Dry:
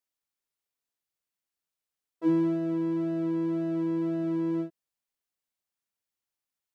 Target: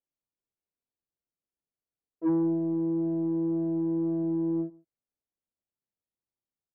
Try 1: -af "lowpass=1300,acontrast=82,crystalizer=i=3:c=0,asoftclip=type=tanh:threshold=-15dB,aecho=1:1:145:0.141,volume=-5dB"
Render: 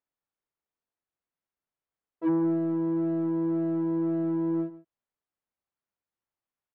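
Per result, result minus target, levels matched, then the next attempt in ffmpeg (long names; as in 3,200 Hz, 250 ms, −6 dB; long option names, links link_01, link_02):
echo-to-direct +7.5 dB; 1,000 Hz band +4.0 dB
-af "lowpass=1300,acontrast=82,crystalizer=i=3:c=0,asoftclip=type=tanh:threshold=-15dB,aecho=1:1:145:0.0596,volume=-5dB"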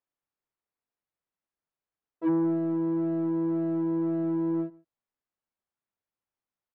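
1,000 Hz band +4.5 dB
-af "lowpass=520,acontrast=82,crystalizer=i=3:c=0,asoftclip=type=tanh:threshold=-15dB,aecho=1:1:145:0.0596,volume=-5dB"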